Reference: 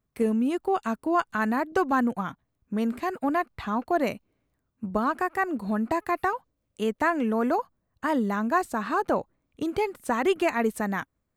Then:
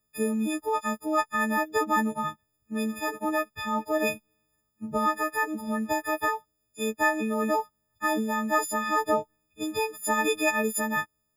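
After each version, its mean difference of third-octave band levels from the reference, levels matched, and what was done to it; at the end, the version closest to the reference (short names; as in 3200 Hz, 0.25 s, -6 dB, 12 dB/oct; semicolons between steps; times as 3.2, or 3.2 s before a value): 9.5 dB: frequency quantiser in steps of 6 st; gain -3 dB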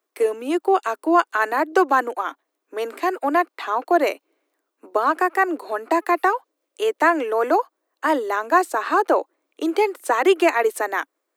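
4.5 dB: steep high-pass 300 Hz 72 dB/oct; gain +7.5 dB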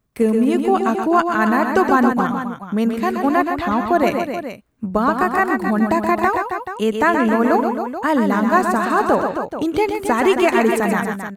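6.0 dB: tapped delay 0.126/0.137/0.269/0.431 s -6/-18/-8.5/-11 dB; gain +8 dB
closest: second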